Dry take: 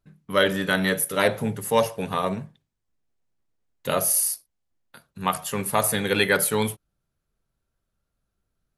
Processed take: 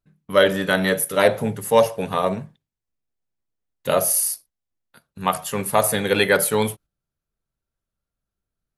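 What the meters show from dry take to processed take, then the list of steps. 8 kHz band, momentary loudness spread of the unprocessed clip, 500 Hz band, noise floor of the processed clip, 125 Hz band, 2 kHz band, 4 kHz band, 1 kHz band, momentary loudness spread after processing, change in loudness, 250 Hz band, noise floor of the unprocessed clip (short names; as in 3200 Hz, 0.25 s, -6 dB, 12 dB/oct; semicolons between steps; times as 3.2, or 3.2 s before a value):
+1.5 dB, 9 LU, +5.5 dB, under -85 dBFS, +1.5 dB, +2.0 dB, +1.5 dB, +3.5 dB, 9 LU, +3.0 dB, +2.0 dB, -80 dBFS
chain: gate -46 dBFS, range -8 dB; dynamic EQ 600 Hz, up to +5 dB, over -33 dBFS, Q 1.4; gain +1.5 dB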